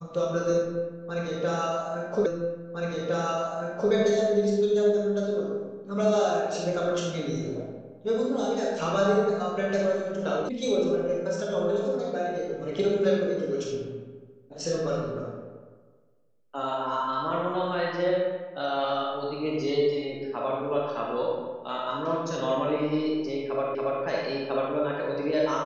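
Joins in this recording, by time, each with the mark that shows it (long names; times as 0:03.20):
0:02.26: the same again, the last 1.66 s
0:10.49: cut off before it has died away
0:23.75: the same again, the last 0.28 s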